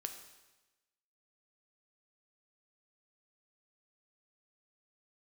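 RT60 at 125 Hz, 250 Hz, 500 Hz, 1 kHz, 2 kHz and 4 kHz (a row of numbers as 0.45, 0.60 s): 1.1, 1.1, 1.1, 1.1, 1.1, 1.1 s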